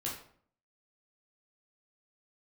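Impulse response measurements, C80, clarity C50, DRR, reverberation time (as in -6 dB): 9.0 dB, 4.5 dB, -5.0 dB, 0.55 s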